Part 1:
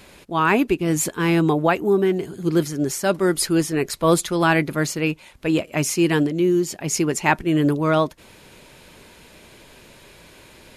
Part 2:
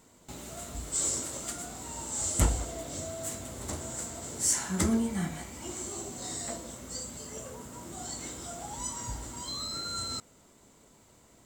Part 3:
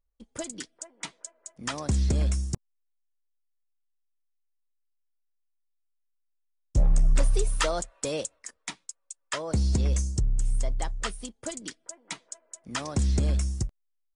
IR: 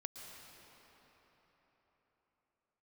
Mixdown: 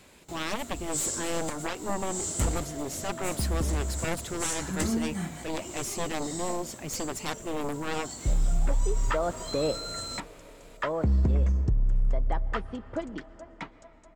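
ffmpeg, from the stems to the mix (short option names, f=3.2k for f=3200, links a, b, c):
-filter_complex "[0:a]aeval=exprs='0.708*(cos(1*acos(clip(val(0)/0.708,-1,1)))-cos(1*PI/2))+0.316*(cos(4*acos(clip(val(0)/0.708,-1,1)))-cos(4*PI/2))+0.316*(cos(7*acos(clip(val(0)/0.708,-1,1)))-cos(7*PI/2))':c=same,volume=-16dB,asplit=2[a][b];[1:a]acontrast=85,asoftclip=type=hard:threshold=-10dB,volume=-8.5dB[c];[2:a]agate=range=-33dB:threshold=-50dB:ratio=3:detection=peak,lowpass=1.6k,adelay=1500,volume=3dB,asplit=2[d][e];[e]volume=-9dB[f];[b]apad=whole_len=690479[g];[d][g]sidechaincompress=threshold=-43dB:ratio=8:attack=16:release=711[h];[3:a]atrim=start_sample=2205[i];[f][i]afir=irnorm=-1:irlink=0[j];[a][c][h][j]amix=inputs=4:normalize=0,alimiter=limit=-17.5dB:level=0:latency=1:release=180"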